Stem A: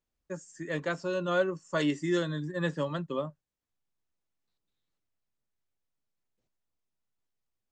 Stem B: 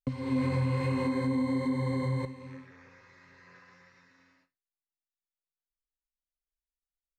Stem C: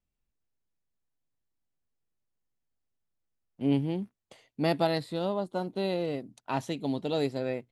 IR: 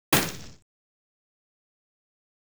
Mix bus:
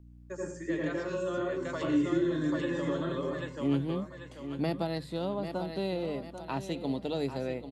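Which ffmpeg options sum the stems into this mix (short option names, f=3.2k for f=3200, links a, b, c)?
-filter_complex "[0:a]highpass=290,acompressor=threshold=-34dB:ratio=4,volume=2dB,asplit=3[a][b][c];[b]volume=-22dB[d];[c]volume=-4.5dB[e];[1:a]adelay=1300,volume=-16dB,asplit=2[f][g];[g]volume=-7.5dB[h];[2:a]aeval=exprs='val(0)+0.00355*(sin(2*PI*60*n/s)+sin(2*PI*2*60*n/s)/2+sin(2*PI*3*60*n/s)/3+sin(2*PI*4*60*n/s)/4+sin(2*PI*5*60*n/s)/5)':c=same,volume=-1.5dB,asplit=3[i][j][k];[j]volume=-11.5dB[l];[k]apad=whole_len=340076[m];[a][m]sidechaincompress=threshold=-51dB:ratio=8:attack=16:release=390[n];[3:a]atrim=start_sample=2205[o];[d][o]afir=irnorm=-1:irlink=0[p];[e][h][l]amix=inputs=3:normalize=0,aecho=0:1:790|1580|2370|3160|3950:1|0.38|0.144|0.0549|0.0209[q];[n][f][i][p][q]amix=inputs=5:normalize=0,bandreject=f=50:t=h:w=6,bandreject=f=100:t=h:w=6,bandreject=f=150:t=h:w=6,acrossover=split=330[r][s];[s]acompressor=threshold=-32dB:ratio=5[t];[r][t]amix=inputs=2:normalize=0"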